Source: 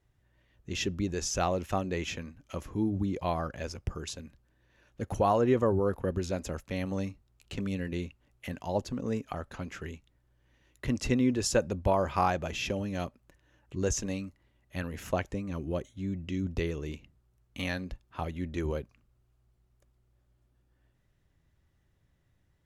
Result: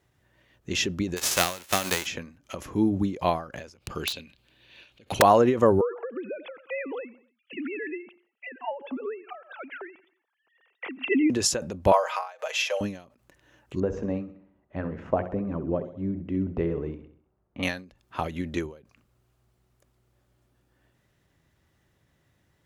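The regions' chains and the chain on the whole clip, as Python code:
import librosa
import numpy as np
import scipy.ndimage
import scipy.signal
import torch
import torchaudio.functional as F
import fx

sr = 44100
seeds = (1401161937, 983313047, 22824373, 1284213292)

y = fx.envelope_flatten(x, sr, power=0.3, at=(1.16, 2.05), fade=0.02)
y = fx.transient(y, sr, attack_db=-1, sustain_db=-9, at=(1.16, 2.05), fade=0.02)
y = fx.chain(y, sr, fx.band_shelf(hz=3200.0, db=14.0, octaves=1.2),
    fx.overflow_wrap(gain_db=20.0), at=(3.78, 5.22))
y = fx.chain(y, sr, fx.sine_speech(),
    fx.low_shelf(hz=390.0, db=-6.0),
    fx.echo_feedback(ms=88, feedback_pct=39, wet_db=-21.5), at=(5.81, 11.3))
y = fx.chain(y, sr, fx.ellip_highpass(hz=520.0, order=4, stop_db=50),
    fx.comb(ms=6.4, depth=0.57), at=(11.92, 12.81))
y = fx.chain(y, sr, fx.lowpass(hz=1000.0, slope=12),
    fx.hum_notches(base_hz=60, count=9),
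    fx.echo_feedback(ms=65, feedback_pct=50, wet_db=-13.5), at=(13.8, 17.63))
y = fx.highpass(y, sr, hz=190.0, slope=6)
y = fx.end_taper(y, sr, db_per_s=130.0)
y = F.gain(torch.from_numpy(y), 8.5).numpy()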